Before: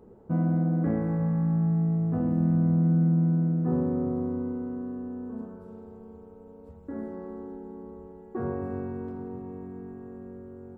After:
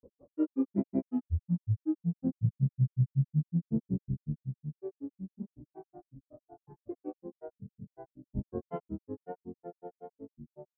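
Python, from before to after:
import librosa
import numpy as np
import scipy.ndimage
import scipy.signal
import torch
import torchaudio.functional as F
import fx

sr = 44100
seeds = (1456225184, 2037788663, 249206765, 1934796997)

y = fx.spec_expand(x, sr, power=1.6)
y = fx.env_lowpass(y, sr, base_hz=550.0, full_db=-21.5)
y = fx.granulator(y, sr, seeds[0], grain_ms=100.0, per_s=5.4, spray_ms=100.0, spread_st=12)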